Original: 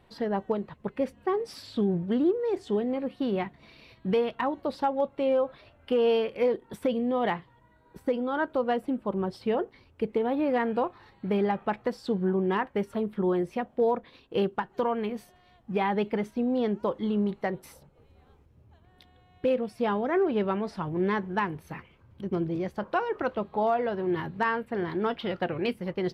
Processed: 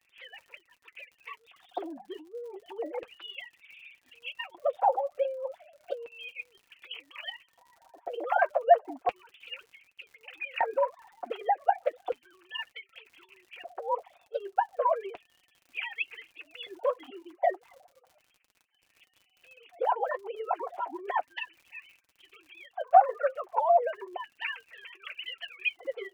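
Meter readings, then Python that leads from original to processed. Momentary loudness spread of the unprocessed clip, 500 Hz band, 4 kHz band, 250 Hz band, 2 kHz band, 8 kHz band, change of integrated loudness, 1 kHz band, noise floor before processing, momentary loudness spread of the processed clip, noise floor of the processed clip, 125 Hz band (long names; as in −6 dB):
7 LU, −5.0 dB, +0.5 dB, −23.0 dB, −1.0 dB, can't be measured, −2.5 dB, +2.5 dB, −60 dBFS, 22 LU, −71 dBFS, below −35 dB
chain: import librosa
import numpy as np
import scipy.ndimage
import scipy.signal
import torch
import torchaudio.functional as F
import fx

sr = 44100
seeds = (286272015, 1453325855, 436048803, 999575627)

y = fx.sine_speech(x, sr)
y = fx.peak_eq(y, sr, hz=190.0, db=4.0, octaves=2.6)
y = fx.env_flanger(y, sr, rest_ms=8.2, full_db=-20.0)
y = fx.over_compress(y, sr, threshold_db=-30.0, ratio=-1.0)
y = fx.filter_lfo_highpass(y, sr, shape='square', hz=0.33, low_hz=720.0, high_hz=2600.0, q=6.1)
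y = fx.dmg_crackle(y, sr, seeds[0], per_s=57.0, level_db=-45.0)
y = fx.notch_comb(y, sr, f0_hz=210.0)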